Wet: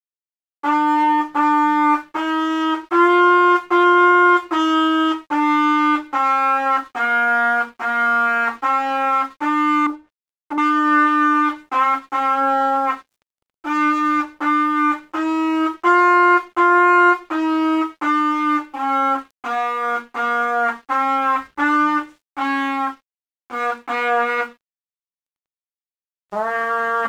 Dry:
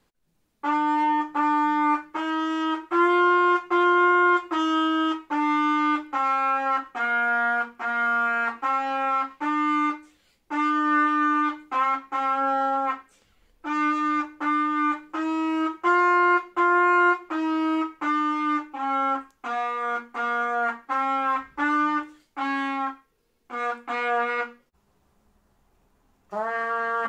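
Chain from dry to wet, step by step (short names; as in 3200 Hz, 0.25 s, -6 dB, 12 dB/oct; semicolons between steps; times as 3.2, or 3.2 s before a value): 9.86–10.58 treble ducked by the level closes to 630 Hz, closed at -28.5 dBFS; crossover distortion -53 dBFS; gain +6.5 dB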